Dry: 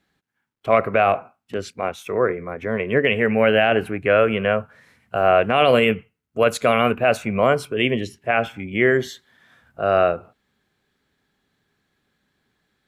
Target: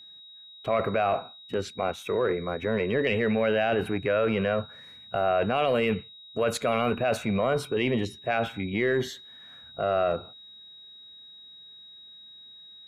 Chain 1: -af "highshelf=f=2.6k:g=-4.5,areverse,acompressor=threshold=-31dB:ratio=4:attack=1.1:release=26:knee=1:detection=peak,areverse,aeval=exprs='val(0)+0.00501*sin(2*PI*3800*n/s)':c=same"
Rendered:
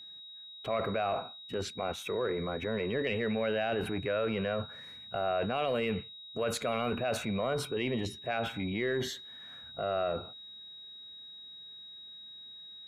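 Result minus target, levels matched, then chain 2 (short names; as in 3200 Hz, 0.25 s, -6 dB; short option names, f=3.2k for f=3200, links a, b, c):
compressor: peak gain reduction +7 dB
-af "highshelf=f=2.6k:g=-4.5,areverse,acompressor=threshold=-22dB:ratio=4:attack=1.1:release=26:knee=1:detection=peak,areverse,aeval=exprs='val(0)+0.00501*sin(2*PI*3800*n/s)':c=same"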